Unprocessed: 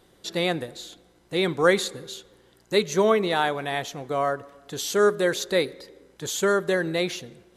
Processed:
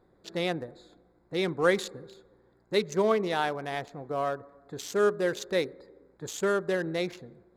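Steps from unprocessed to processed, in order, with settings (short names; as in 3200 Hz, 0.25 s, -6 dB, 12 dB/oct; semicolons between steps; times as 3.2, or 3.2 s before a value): Wiener smoothing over 15 samples; gain -4.5 dB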